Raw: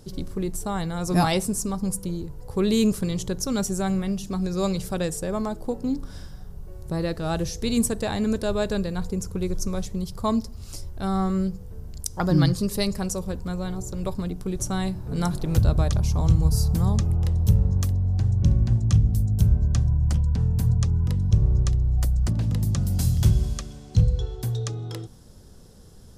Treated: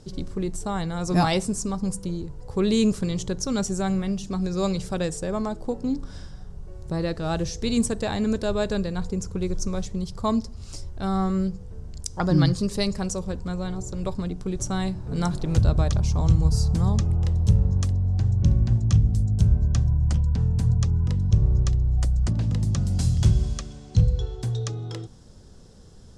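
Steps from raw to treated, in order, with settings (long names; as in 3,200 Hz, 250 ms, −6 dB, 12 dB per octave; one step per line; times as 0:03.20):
low-pass filter 8,600 Hz 24 dB per octave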